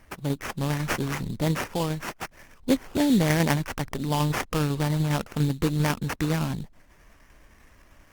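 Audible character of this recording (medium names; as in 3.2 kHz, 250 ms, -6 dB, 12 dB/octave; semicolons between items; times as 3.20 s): aliases and images of a low sample rate 4 kHz, jitter 20%; tremolo saw down 10 Hz, depth 35%; Opus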